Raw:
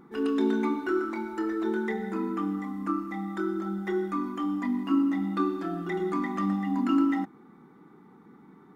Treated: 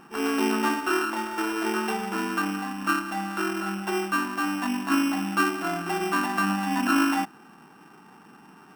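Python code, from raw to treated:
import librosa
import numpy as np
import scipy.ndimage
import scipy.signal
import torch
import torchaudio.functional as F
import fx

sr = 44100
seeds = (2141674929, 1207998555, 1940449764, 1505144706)

y = np.r_[np.sort(x[:len(x) // 16 * 16].reshape(-1, 16), axis=1).ravel(), x[len(x) // 16 * 16:]]
y = fx.band_shelf(y, sr, hz=1000.0, db=11.0, octaves=1.7)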